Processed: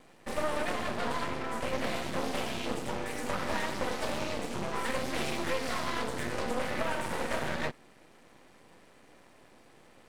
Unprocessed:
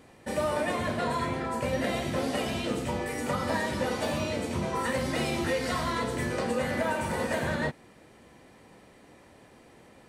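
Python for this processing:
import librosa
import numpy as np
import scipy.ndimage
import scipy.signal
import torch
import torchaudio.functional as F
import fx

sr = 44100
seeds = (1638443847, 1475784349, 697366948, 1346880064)

y = fx.highpass(x, sr, hz=180.0, slope=6)
y = np.maximum(y, 0.0)
y = fx.doppler_dist(y, sr, depth_ms=0.42)
y = F.gain(torch.from_numpy(y), 1.5).numpy()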